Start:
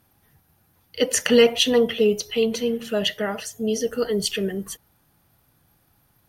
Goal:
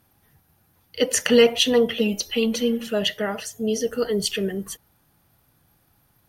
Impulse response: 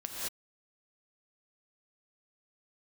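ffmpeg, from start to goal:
-filter_complex "[0:a]asettb=1/sr,asplit=3[s0][s1][s2];[s0]atrim=end=1.974[s3];[s1]atrim=start=1.97:end=2.87,asetpts=PTS-STARTPTS,afade=t=in:d=0.004:c=qsin,afade=t=out:st=0.896:d=0.004:c=qsin,aecho=1:1:3.6:0.76,atrim=end_sample=39690[s4];[s2]atrim=start=2.866[s5];[s3][s4]acrossfade=d=0.004:c1=hsin:c2=qsin[s6];[s6][s5]acrossfade=d=0.004:c1=qsin:c2=hsin"

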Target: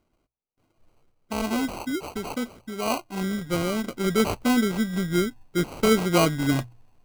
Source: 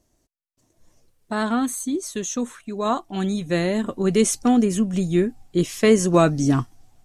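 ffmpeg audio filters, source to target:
-af "acrusher=samples=25:mix=1:aa=0.000001,bandreject=f=60:t=h:w=6,bandreject=f=120:t=h:w=6,volume=0.631"

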